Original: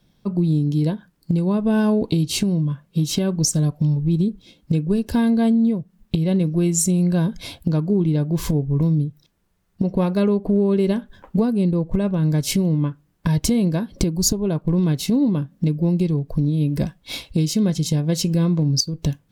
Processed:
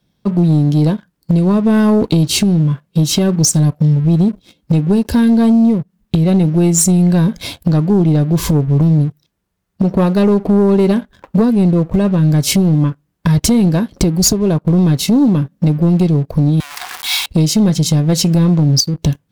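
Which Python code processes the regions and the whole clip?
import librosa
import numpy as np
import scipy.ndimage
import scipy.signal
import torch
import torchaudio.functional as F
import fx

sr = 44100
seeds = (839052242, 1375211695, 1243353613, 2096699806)

y = fx.chain(x, sr, fx.zero_step(step_db=-25.0),
    fx.brickwall_highpass(low_hz=700.0), at=(16.6, 17.26))
y = scipy.signal.sosfilt(scipy.signal.butter(2, 40.0, 'highpass', fs=sr, output='sos'), y)
y = fx.leveller(y, sr, passes=2)
y = y * librosa.db_to_amplitude(1.5)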